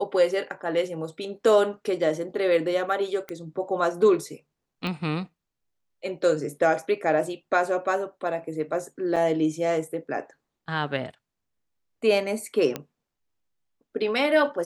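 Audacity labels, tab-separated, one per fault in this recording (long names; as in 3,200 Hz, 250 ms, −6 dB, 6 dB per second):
3.290000	3.290000	click −19 dBFS
4.870000	4.870000	click −18 dBFS
9.160000	9.160000	drop-out 4 ms
12.760000	12.760000	click −14 dBFS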